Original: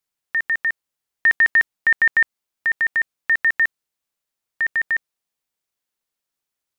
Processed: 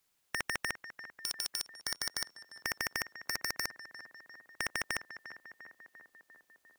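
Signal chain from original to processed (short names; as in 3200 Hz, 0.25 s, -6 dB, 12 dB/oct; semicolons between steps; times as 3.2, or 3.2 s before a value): wavefolder -17.5 dBFS; tape echo 0.348 s, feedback 77%, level -14.5 dB, low-pass 1500 Hz; spectral compressor 2:1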